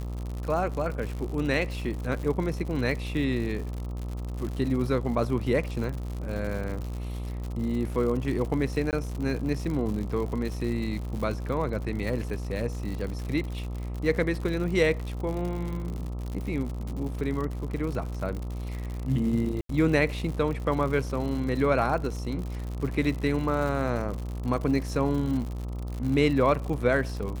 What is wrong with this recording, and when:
buzz 60 Hz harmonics 22 -33 dBFS
crackle 110/s -33 dBFS
8.91–8.93 gap 18 ms
19.61–19.69 gap 83 ms

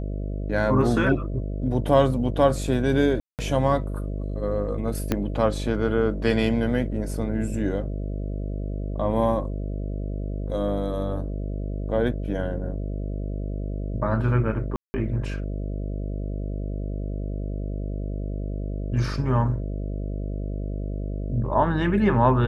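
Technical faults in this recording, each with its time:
buzz 50 Hz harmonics 13 -29 dBFS
3.2–3.39 gap 0.188 s
5.12 pop -9 dBFS
14.76–14.94 gap 0.18 s

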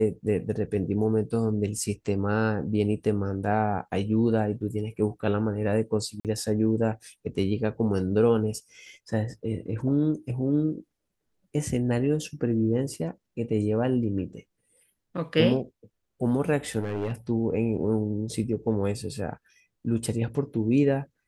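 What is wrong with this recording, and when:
6.2–6.25 gap 48 ms
16.79–17.13 clipped -25 dBFS

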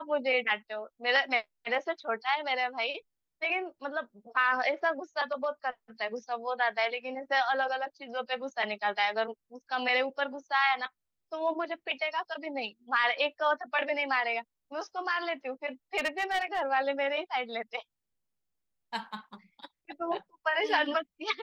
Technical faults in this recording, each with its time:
15.97–16.61 clipped -25 dBFS

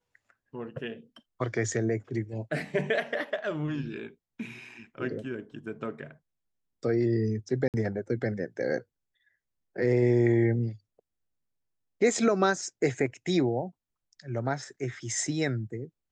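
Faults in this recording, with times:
7.68–7.74 gap 58 ms

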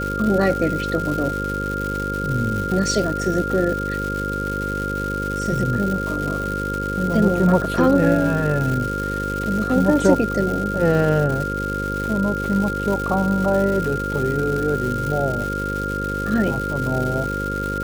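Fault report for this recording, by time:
buzz 50 Hz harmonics 11 -27 dBFS
crackle 340/s -25 dBFS
tone 1400 Hz -25 dBFS

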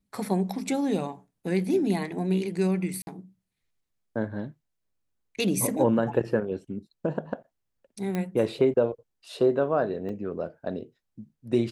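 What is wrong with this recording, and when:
3.02–3.07 gap 51 ms
8.15 pop -17 dBFS
10.09 gap 3.9 ms

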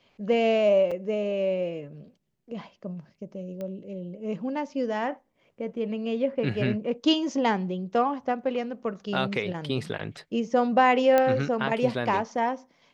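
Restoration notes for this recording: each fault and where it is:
0.91 gap 4.6 ms
3.61 pop -24 dBFS
11.18 pop -10 dBFS

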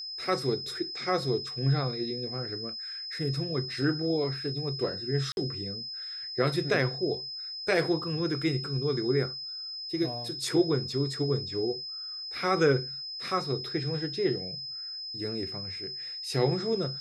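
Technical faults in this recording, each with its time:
tone 5100 Hz -36 dBFS
5.32–5.37 gap 51 ms

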